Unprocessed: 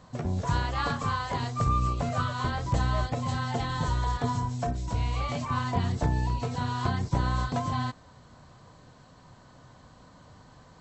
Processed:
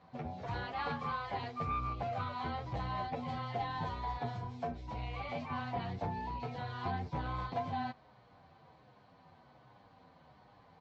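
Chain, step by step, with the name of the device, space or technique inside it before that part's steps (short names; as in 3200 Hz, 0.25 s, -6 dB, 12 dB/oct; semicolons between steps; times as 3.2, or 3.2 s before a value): barber-pole flanger into a guitar amplifier (endless flanger 8.5 ms -1.3 Hz; soft clip -21.5 dBFS, distortion -20 dB; speaker cabinet 78–4400 Hz, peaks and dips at 120 Hz -3 dB, 480 Hz +3 dB, 780 Hz +9 dB, 2300 Hz +6 dB); gain -6 dB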